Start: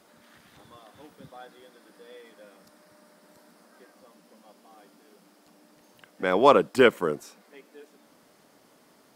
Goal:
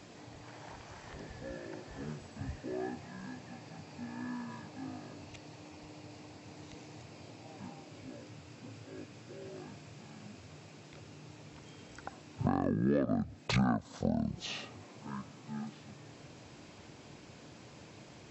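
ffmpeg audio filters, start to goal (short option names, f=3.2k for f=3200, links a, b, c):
-af "asetrate=22050,aresample=44100,acompressor=threshold=-34dB:ratio=8,volume=6.5dB"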